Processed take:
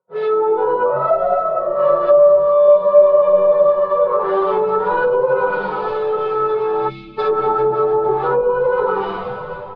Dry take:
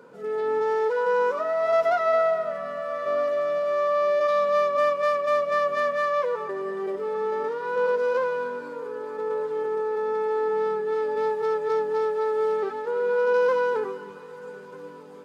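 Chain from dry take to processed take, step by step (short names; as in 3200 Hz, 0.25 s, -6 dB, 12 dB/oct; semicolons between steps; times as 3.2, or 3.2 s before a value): bell 2300 Hz +10 dB 1.7 oct; on a send: frequency-shifting echo 0.254 s, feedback 56%, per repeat -100 Hz, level -13 dB; on the sum: digital reverb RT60 1.1 s, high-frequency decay 0.5×, pre-delay 70 ms, DRR -1.5 dB; in parallel at +2.5 dB: compressor 12:1, threshold -22 dBFS, peak gain reduction 15.5 dB; on the sum: gate -33 dBFS, range -38 dB; spectral gain 10.76–11.23, 330–2100 Hz -27 dB; low-pass opened by the level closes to 890 Hz, open at -12 dBFS; flange 0.14 Hz, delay 0.9 ms, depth 4.3 ms, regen +90%; ten-band EQ 125 Hz +11 dB, 250 Hz -12 dB, 500 Hz +7 dB, 1000 Hz +7 dB, 2000 Hz -7 dB, 4000 Hz +12 dB; plain phase-vocoder stretch 0.64×; treble ducked by the level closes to 720 Hz, closed at -12.5 dBFS; comb 5.4 ms, depth 68%; gain +2.5 dB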